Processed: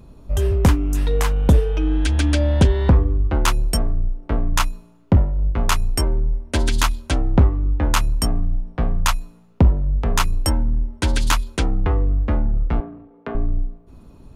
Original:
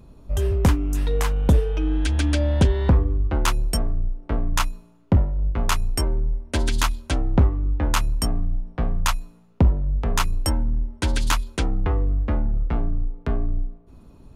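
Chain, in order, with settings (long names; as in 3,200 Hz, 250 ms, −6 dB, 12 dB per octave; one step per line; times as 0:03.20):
0:12.80–0:13.35: band-pass filter 290–3,100 Hz
level +3 dB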